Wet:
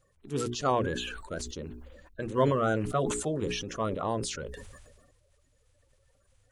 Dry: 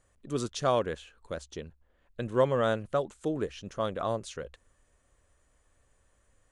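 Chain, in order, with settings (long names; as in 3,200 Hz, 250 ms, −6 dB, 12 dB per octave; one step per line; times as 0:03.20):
spectral magnitudes quantised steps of 30 dB
mains-hum notches 60/120/180/240/300/360/420 Hz
level that may fall only so fast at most 39 dB per second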